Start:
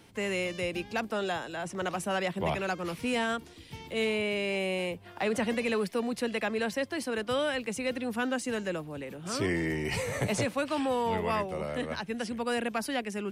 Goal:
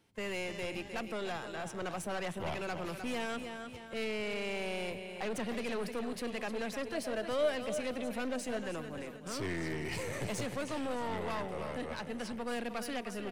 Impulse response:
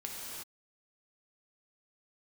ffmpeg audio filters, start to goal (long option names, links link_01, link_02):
-filter_complex "[0:a]agate=range=-12dB:threshold=-40dB:ratio=16:detection=peak,aecho=1:1:307|614|921|1228|1535:0.282|0.124|0.0546|0.024|0.0106,aeval=exprs='(tanh(28.2*val(0)+0.55)-tanh(0.55))/28.2':channel_layout=same,asplit=2[link_01][link_02];[link_02]alimiter=level_in=10dB:limit=-24dB:level=0:latency=1,volume=-10dB,volume=-2dB[link_03];[link_01][link_03]amix=inputs=2:normalize=0,asettb=1/sr,asplit=3[link_04][link_05][link_06];[link_04]atrim=end=6.944[link_07];[link_05]atrim=start=6.94:end=8.57,asetpts=PTS-STARTPTS,afade=type=in:duration=0.004:curve=qsin,afade=type=out:start_time=1.626:duration=0.004:curve=qsin,equalizer=frequency=630:width=6.6:gain=14.5[link_08];[link_06]atrim=start=8.566[link_09];[link_07][link_08]acrossfade=duration=0.004:curve1=hsin:curve2=qsin[link_10];[link_10][link_09]acrossfade=duration=0.004:curve1=qsin:curve2=hsin,asplit=2[link_11][link_12];[1:a]atrim=start_sample=2205[link_13];[link_12][link_13]afir=irnorm=-1:irlink=0,volume=-21dB[link_14];[link_11][link_14]amix=inputs=2:normalize=0,volume=-6dB"